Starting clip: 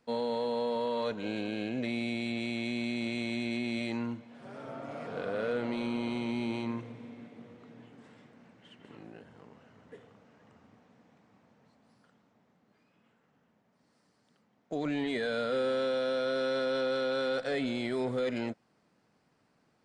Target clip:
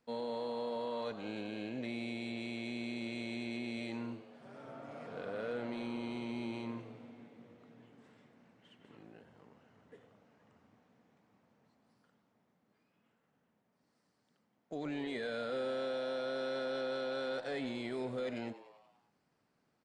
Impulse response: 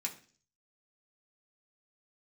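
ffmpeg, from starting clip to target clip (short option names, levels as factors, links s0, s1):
-filter_complex "[0:a]asplit=7[s0][s1][s2][s3][s4][s5][s6];[s1]adelay=96,afreqshift=100,volume=0.168[s7];[s2]adelay=192,afreqshift=200,volume=0.102[s8];[s3]adelay=288,afreqshift=300,volume=0.0624[s9];[s4]adelay=384,afreqshift=400,volume=0.038[s10];[s5]adelay=480,afreqshift=500,volume=0.0232[s11];[s6]adelay=576,afreqshift=600,volume=0.0141[s12];[s0][s7][s8][s9][s10][s11][s12]amix=inputs=7:normalize=0,volume=0.447"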